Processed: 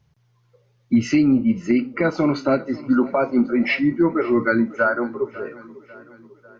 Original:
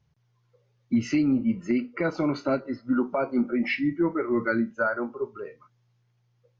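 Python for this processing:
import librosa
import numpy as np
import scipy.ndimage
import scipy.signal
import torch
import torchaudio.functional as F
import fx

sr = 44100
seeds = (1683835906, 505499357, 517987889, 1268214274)

y = fx.echo_feedback(x, sr, ms=547, feedback_pct=53, wet_db=-19.5)
y = F.gain(torch.from_numpy(y), 6.5).numpy()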